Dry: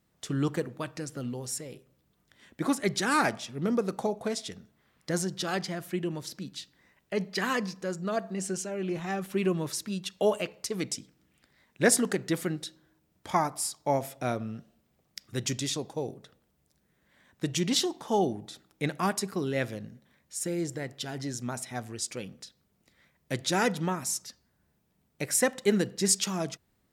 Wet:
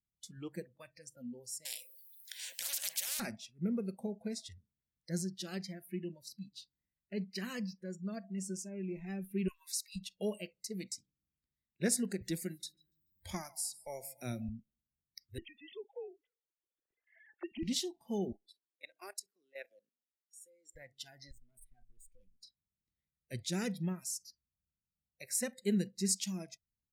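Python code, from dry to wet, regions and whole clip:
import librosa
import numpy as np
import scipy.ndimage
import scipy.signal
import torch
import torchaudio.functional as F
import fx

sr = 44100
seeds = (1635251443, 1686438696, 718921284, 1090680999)

y = fx.chain(x, sr, fx.cheby1_highpass(hz=470.0, order=3),
    fx.high_shelf(hz=2500.0, db=9.0),
    fx.spectral_comp(ratio=10.0), at=(1.65, 3.2))
y = fx.chain(y, sr, fx.cheby1_highpass(hz=1000.0, order=5),
    fx.high_shelf(hz=2200.0, db=6.5), at=(9.48, 9.96))
y = fx.chain(y, sr, fx.high_shelf(hz=3900.0, db=5.5),
    fx.echo_feedback(ms=143, feedback_pct=36, wet_db=-19.5),
    fx.band_squash(depth_pct=40), at=(12.21, 14.49))
y = fx.chain(y, sr, fx.sine_speech(),
    fx.band_squash(depth_pct=70), at=(15.38, 17.63))
y = fx.chain(y, sr, fx.highpass(hz=350.0, slope=24),
    fx.level_steps(step_db=15), at=(18.32, 20.76))
y = fx.chain(y, sr, fx.peak_eq(hz=5400.0, db=-10.0, octaves=0.6),
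    fx.level_steps(step_db=14),
    fx.tube_stage(drive_db=44.0, bias=0.6), at=(21.31, 22.43))
y = fx.noise_reduce_blind(y, sr, reduce_db=23)
y = fx.tone_stack(y, sr, knobs='10-0-1')
y = y * 10.0 ** (12.5 / 20.0)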